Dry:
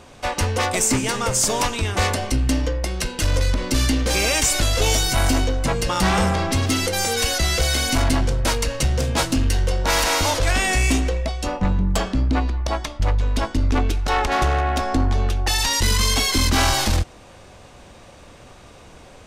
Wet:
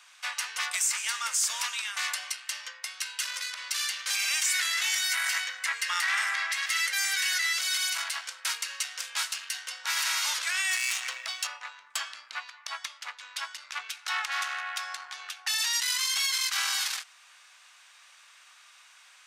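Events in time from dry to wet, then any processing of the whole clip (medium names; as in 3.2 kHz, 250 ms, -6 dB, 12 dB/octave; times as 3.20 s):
4.46–7.53 s: peaking EQ 1.9 kHz +11 dB 0.51 oct
10.71–11.47 s: waveshaping leveller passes 2
whole clip: high-pass 1.3 kHz 24 dB/octave; peak limiter -14 dBFS; trim -3.5 dB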